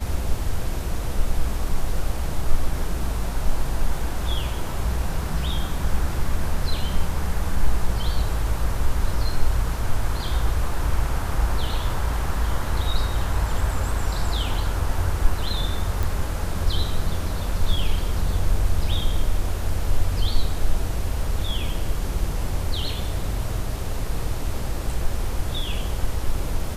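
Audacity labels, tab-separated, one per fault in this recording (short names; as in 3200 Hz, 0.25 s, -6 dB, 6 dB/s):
16.030000	16.030000	pop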